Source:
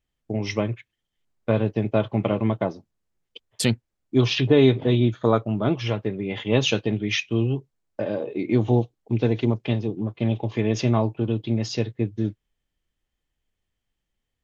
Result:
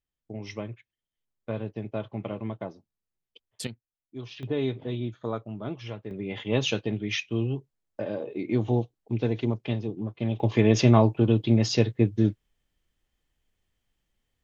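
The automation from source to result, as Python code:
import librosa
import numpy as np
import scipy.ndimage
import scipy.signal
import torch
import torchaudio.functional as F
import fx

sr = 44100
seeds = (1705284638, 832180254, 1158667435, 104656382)

y = fx.gain(x, sr, db=fx.steps((0.0, -11.0), (3.67, -20.0), (4.43, -12.0), (6.11, -5.0), (10.4, 3.0)))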